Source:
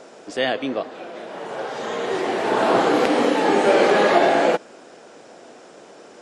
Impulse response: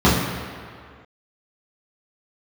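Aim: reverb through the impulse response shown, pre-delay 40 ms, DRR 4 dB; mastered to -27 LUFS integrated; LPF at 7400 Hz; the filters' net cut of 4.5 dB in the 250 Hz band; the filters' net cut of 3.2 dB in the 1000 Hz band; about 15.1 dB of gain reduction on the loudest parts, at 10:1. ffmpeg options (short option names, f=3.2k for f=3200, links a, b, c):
-filter_complex "[0:a]lowpass=7.4k,equalizer=f=250:t=o:g=-6,equalizer=f=1k:t=o:g=-4,acompressor=threshold=-30dB:ratio=10,asplit=2[a][b];[1:a]atrim=start_sample=2205,adelay=40[c];[b][c]afir=irnorm=-1:irlink=0,volume=-28.5dB[d];[a][d]amix=inputs=2:normalize=0,volume=4.5dB"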